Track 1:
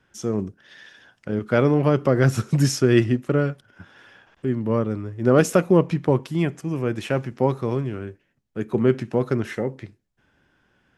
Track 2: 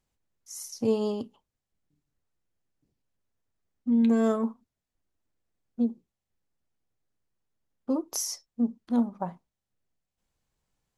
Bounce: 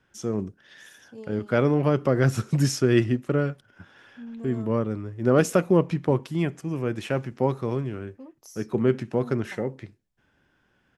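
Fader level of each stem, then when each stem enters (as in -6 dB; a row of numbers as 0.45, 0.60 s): -3.0, -17.0 dB; 0.00, 0.30 s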